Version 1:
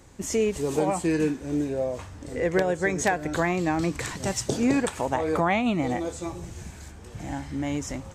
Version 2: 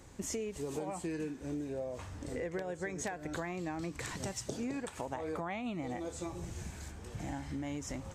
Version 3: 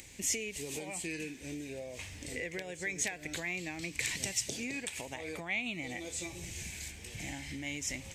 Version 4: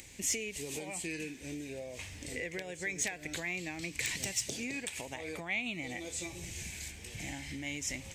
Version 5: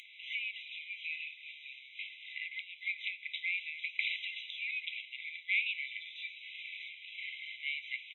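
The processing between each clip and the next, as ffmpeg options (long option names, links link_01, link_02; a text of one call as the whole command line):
ffmpeg -i in.wav -af "acompressor=threshold=-33dB:ratio=6,volume=-3dB" out.wav
ffmpeg -i in.wav -af "acompressor=mode=upward:threshold=-53dB:ratio=2.5,crystalizer=i=0.5:c=0,highshelf=frequency=1700:width_type=q:width=3:gain=9.5,volume=-3.5dB" out.wav
ffmpeg -i in.wav -af "asoftclip=type=hard:threshold=-23.5dB" out.wav
ffmpeg -i in.wav -af "aresample=11025,acrusher=bits=3:mode=log:mix=0:aa=0.000001,aresample=44100,flanger=delay=6.2:depth=8.7:regen=84:speed=0.45:shape=sinusoidal,afftfilt=real='re*eq(mod(floor(b*sr/1024/2000),2),1)':imag='im*eq(mod(floor(b*sr/1024/2000),2),1)':win_size=1024:overlap=0.75,volume=8.5dB" out.wav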